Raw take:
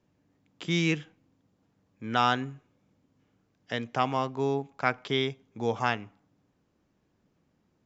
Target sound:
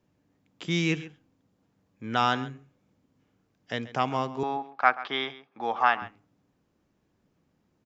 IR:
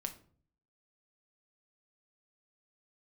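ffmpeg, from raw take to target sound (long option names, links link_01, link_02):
-filter_complex "[0:a]asettb=1/sr,asplit=3[link_01][link_02][link_03];[link_01]atrim=end=4.434[link_04];[link_02]atrim=start=4.43:end=6.02,asetpts=PTS-STARTPTS,afade=type=in:duration=0.004:curve=qsin,afade=type=out:start_time=1.586:duration=0.004:curve=qsin,highpass=350,equalizer=frequency=430:width_type=q:width=4:gain=-7,equalizer=frequency=790:width_type=q:width=4:gain=8,equalizer=frequency=1200:width_type=q:width=4:gain=9,equalizer=frequency=1700:width_type=q:width=4:gain=5,lowpass=frequency=4400:width=0.5412,lowpass=frequency=4400:width=1.3066[link_05];[link_03]atrim=start=6.016[link_06];[link_04][link_05]acrossfade=duration=0.004:curve1=hsin:curve2=qsin[link_07];[link_07][link_06]acrossfade=duration=0.004:curve1=qsin:curve2=hsin,asplit=2[link_08][link_09];[link_09]adelay=134.1,volume=-16dB,highshelf=frequency=4000:gain=-3.02[link_10];[link_08][link_10]amix=inputs=2:normalize=0"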